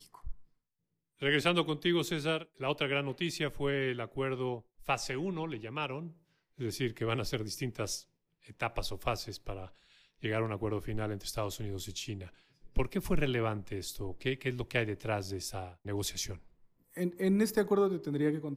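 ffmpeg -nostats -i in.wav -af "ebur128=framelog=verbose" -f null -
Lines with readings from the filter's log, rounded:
Integrated loudness:
  I:         -34.3 LUFS
  Threshold: -44.8 LUFS
Loudness range:
  LRA:         5.4 LU
  Threshold: -55.5 LUFS
  LRA low:   -38.0 LUFS
  LRA high:  -32.5 LUFS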